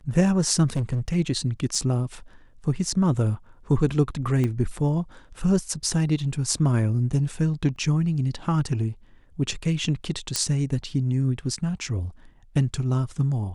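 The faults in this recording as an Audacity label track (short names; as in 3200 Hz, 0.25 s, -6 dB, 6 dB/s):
0.760000	1.160000	clipped -21 dBFS
1.750000	1.750000	gap 2.6 ms
4.440000	4.440000	pop -15 dBFS
7.760000	7.760000	gap 2.1 ms
10.360000	10.360000	pop -7 dBFS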